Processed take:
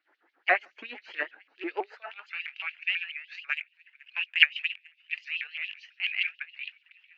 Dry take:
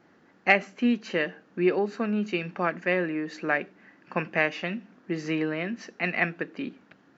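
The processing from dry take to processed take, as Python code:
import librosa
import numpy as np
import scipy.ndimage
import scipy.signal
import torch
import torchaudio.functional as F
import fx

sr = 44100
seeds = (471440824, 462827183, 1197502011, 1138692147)

p1 = fx.rattle_buzz(x, sr, strikes_db=-34.0, level_db=-29.0)
p2 = p1 + fx.echo_thinned(p1, sr, ms=450, feedback_pct=48, hz=1100.0, wet_db=-23, dry=0)
p3 = fx.filter_sweep_highpass(p2, sr, from_hz=320.0, to_hz=2600.0, start_s=1.75, end_s=2.55, q=4.4)
p4 = fx.air_absorb(p3, sr, metres=250.0)
p5 = fx.notch(p4, sr, hz=1100.0, q=7.4)
p6 = fx.level_steps(p5, sr, step_db=22)
p7 = p5 + (p6 * 10.0 ** (2.0 / 20.0))
p8 = fx.doubler(p7, sr, ms=21.0, db=-11.5)
p9 = fx.filter_lfo_highpass(p8, sr, shape='sine', hz=7.1, low_hz=800.0, high_hz=4000.0, q=2.2)
p10 = fx.transient(p9, sr, attack_db=5, sustain_db=-7, at=(3.45, 5.22), fade=0.02)
p11 = fx.vibrato_shape(p10, sr, shape='saw_up', rate_hz=6.1, depth_cents=160.0)
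y = p11 * 10.0 ** (-8.5 / 20.0)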